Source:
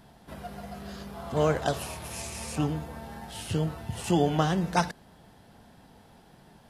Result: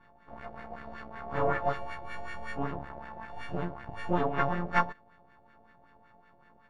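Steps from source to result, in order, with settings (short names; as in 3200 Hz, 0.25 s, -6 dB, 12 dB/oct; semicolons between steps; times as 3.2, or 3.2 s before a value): frequency quantiser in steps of 4 st; in parallel at -7 dB: bit-crush 6-bit; on the sum: half-wave rectifier; LFO low-pass sine 5.3 Hz 670–1800 Hz; gain -5 dB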